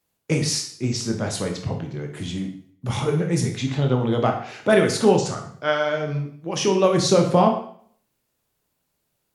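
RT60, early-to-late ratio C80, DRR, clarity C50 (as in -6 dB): 0.55 s, 10.5 dB, 2.5 dB, 7.5 dB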